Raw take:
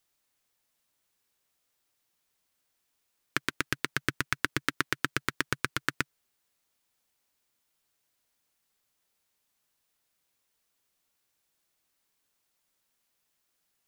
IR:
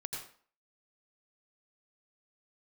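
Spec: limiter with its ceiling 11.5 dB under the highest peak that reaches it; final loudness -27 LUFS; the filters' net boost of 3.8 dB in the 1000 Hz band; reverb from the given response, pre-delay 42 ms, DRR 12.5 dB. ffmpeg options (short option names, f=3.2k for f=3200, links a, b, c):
-filter_complex "[0:a]equalizer=f=1k:t=o:g=5.5,alimiter=limit=-15dB:level=0:latency=1,asplit=2[a][b];[1:a]atrim=start_sample=2205,adelay=42[c];[b][c]afir=irnorm=-1:irlink=0,volume=-12.5dB[d];[a][d]amix=inputs=2:normalize=0,volume=14dB"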